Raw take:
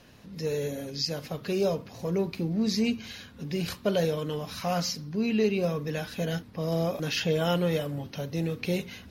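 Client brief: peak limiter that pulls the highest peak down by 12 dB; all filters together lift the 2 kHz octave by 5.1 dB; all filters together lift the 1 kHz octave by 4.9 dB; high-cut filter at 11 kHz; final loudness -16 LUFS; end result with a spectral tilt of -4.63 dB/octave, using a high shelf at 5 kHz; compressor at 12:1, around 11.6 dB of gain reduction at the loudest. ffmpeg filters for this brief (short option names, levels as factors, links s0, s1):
-af "lowpass=11000,equalizer=f=1000:t=o:g=6,equalizer=f=2000:t=o:g=3.5,highshelf=f=5000:g=9,acompressor=threshold=0.0282:ratio=12,volume=15.8,alimiter=limit=0.447:level=0:latency=1"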